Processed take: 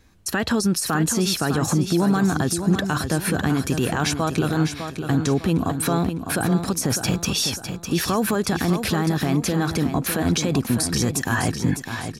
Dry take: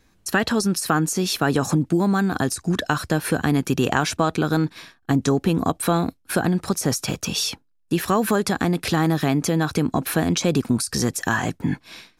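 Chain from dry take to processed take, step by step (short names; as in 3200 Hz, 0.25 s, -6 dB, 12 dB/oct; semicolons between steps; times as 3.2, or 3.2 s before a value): bell 80 Hz +6 dB 1.4 oct; limiter -14.5 dBFS, peak gain reduction 9.5 dB; on a send: feedback echo 0.604 s, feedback 38%, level -8 dB; on the sum: gain +2 dB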